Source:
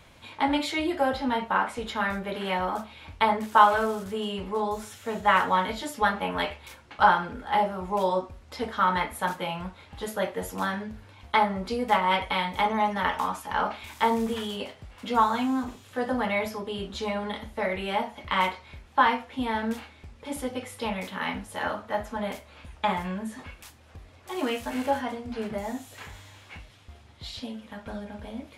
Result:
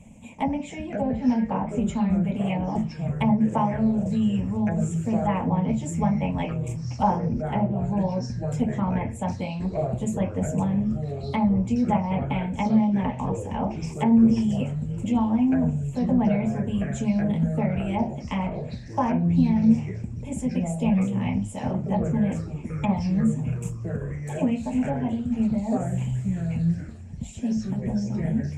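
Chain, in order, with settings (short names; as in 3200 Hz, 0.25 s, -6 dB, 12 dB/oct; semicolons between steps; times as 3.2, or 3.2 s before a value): treble ducked by the level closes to 1900 Hz, closed at -21 dBFS; EQ curve 100 Hz 0 dB, 230 Hz +8 dB, 360 Hz -15 dB, 540 Hz -2 dB, 920 Hz -8 dB, 1400 Hz -29 dB, 2500 Hz -6 dB, 4400 Hz -29 dB, 7400 Hz +6 dB, 11000 Hz -12 dB; harmonic-percussive split harmonic -11 dB; bell 220 Hz +8 dB 0.85 oct; echoes that change speed 0.385 s, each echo -5 st, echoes 3, each echo -6 dB; gain +8.5 dB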